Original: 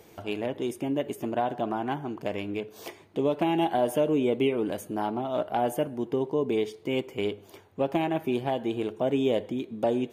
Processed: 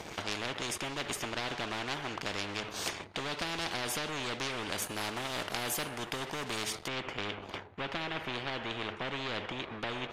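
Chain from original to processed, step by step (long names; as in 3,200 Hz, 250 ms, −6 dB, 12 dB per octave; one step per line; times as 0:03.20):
leveller curve on the samples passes 2
low-pass filter 6,300 Hz 12 dB per octave, from 0:04.82 11,000 Hz, from 0:06.88 2,700 Hz
every bin compressed towards the loudest bin 4 to 1
level −1 dB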